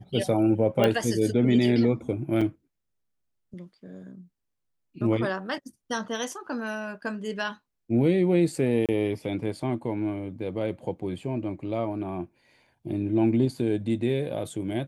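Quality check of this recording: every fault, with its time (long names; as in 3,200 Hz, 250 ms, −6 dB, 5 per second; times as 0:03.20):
0:00.84: click −10 dBFS
0:02.41–0:02.42: drop-out 5.2 ms
0:08.86–0:08.89: drop-out 27 ms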